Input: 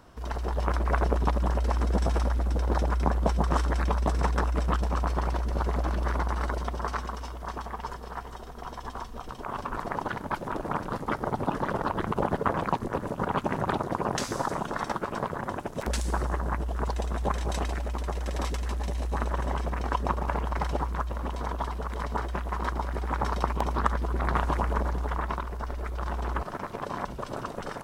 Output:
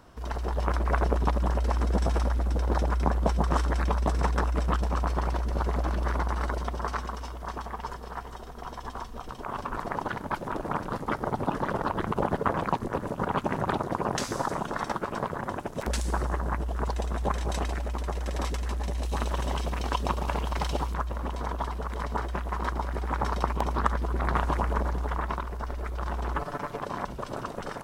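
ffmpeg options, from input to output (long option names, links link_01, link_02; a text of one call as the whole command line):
ffmpeg -i in.wav -filter_complex "[0:a]asettb=1/sr,asplit=3[link_01][link_02][link_03];[link_01]atrim=end=19.034[link_04];[link_02]atrim=start=19.03:end=20.94,asetpts=PTS-STARTPTS,afade=type=in:duration=0.004:curve=qsin,afade=type=out:start_time=1.906:duration=0.004:curve=qsin,highshelf=frequency=2300:width_type=q:width=1.5:gain=6.5[link_05];[link_03]atrim=start=20.936[link_06];[link_04][link_05]acrossfade=duration=0.004:curve1=hsin:curve2=qsin[link_07];[link_07][link_06]acrossfade=duration=0.004:curve1=qsin:curve2=hsin,asettb=1/sr,asplit=3[link_08][link_09][link_10];[link_08]atrim=end=26.364[link_11];[link_09]atrim=start=26.36:end=26.78,asetpts=PTS-STARTPTS,afade=type=in:duration=0.004:curve=qsin,afade=type=out:start_time=0.416:duration=0.004:curve=qsin,aecho=1:1:6.9:0.59,atrim=end_sample=18522[link_12];[link_10]atrim=start=26.776[link_13];[link_11][link_12]acrossfade=duration=0.004:curve1=hsin:curve2=qsin[link_14];[link_14][link_13]acrossfade=duration=0.004:curve1=qsin:curve2=hsin" out.wav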